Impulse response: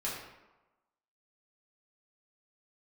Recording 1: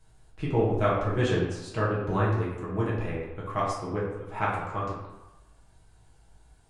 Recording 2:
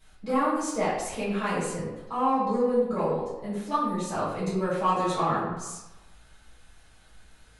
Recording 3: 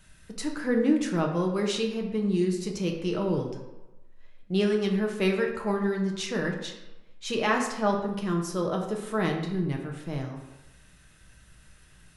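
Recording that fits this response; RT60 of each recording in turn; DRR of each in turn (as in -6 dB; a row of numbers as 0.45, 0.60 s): 1; 1.1, 1.1, 1.1 s; -7.5, -13.0, 1.0 dB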